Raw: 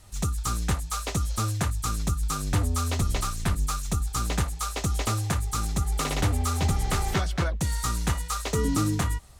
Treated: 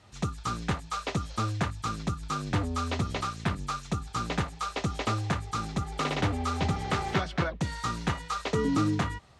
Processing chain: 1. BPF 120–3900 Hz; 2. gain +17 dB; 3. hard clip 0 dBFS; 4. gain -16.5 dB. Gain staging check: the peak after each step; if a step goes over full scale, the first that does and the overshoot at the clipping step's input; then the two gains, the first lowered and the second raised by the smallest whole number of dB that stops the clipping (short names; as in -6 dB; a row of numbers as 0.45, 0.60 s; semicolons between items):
-13.5, +3.5, 0.0, -16.5 dBFS; step 2, 3.5 dB; step 2 +13 dB, step 4 -12.5 dB